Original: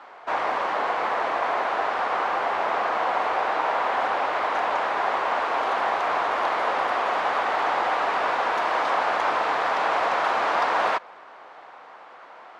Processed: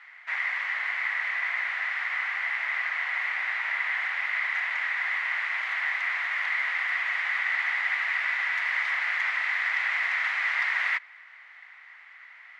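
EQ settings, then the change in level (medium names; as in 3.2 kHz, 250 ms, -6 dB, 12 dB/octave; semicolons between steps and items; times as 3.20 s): resonant high-pass 2 kHz, resonance Q 9.5; -7.5 dB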